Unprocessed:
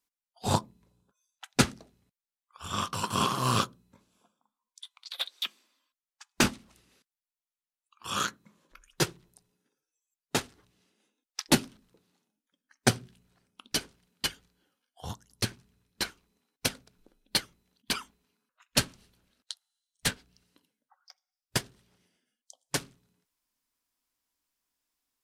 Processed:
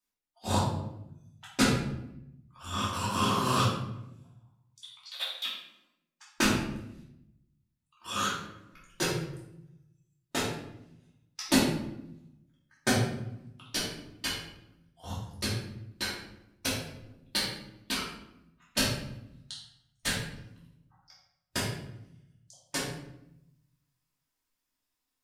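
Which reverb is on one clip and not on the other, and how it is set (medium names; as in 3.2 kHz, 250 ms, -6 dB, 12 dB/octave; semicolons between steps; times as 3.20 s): simulated room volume 240 m³, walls mixed, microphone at 2.7 m; trim -8 dB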